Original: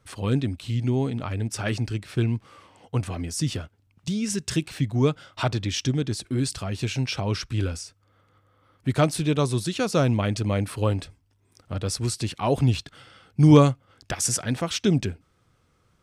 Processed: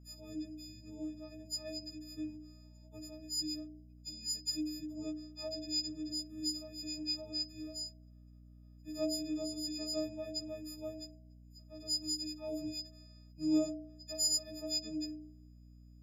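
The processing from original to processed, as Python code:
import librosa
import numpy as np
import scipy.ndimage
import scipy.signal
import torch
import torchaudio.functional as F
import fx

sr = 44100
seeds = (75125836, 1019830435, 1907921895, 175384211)

y = fx.freq_snap(x, sr, grid_st=6)
y = fx.stiff_resonator(y, sr, f0_hz=300.0, decay_s=0.79, stiffness=0.03)
y = fx.add_hum(y, sr, base_hz=60, snr_db=16)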